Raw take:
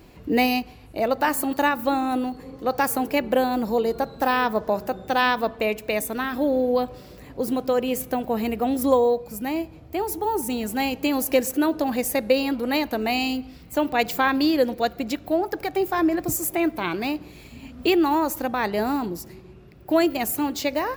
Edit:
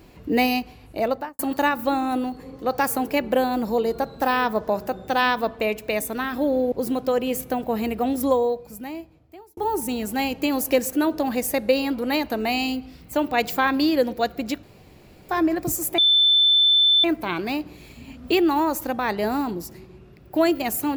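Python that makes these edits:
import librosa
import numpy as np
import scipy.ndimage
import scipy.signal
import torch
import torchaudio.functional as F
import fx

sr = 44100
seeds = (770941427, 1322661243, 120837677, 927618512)

y = fx.studio_fade_out(x, sr, start_s=1.04, length_s=0.35)
y = fx.edit(y, sr, fx.cut(start_s=6.72, length_s=0.61),
    fx.fade_out_span(start_s=8.69, length_s=1.49),
    fx.room_tone_fill(start_s=15.24, length_s=0.66),
    fx.insert_tone(at_s=16.59, length_s=1.06, hz=3530.0, db=-13.5), tone=tone)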